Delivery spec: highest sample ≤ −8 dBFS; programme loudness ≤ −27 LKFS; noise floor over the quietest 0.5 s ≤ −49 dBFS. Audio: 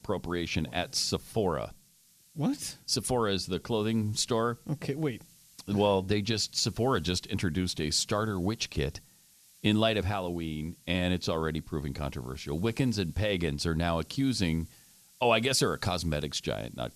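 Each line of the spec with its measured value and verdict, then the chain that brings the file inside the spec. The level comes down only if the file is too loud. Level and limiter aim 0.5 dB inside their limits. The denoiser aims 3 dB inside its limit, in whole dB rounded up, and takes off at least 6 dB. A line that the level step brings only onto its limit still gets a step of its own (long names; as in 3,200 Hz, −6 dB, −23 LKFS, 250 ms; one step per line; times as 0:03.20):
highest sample −10.0 dBFS: in spec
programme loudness −30.0 LKFS: in spec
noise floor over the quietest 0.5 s −62 dBFS: in spec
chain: no processing needed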